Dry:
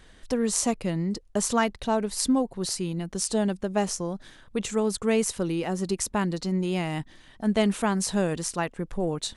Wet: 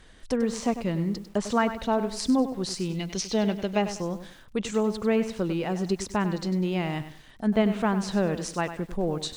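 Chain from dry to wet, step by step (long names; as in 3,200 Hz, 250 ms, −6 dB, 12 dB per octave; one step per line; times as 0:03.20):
gain on a spectral selection 0:02.94–0:03.81, 1,900–6,800 Hz +10 dB
treble cut that deepens with the level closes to 2,400 Hz, closed at −20 dBFS
feedback echo at a low word length 98 ms, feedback 35%, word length 8 bits, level −11 dB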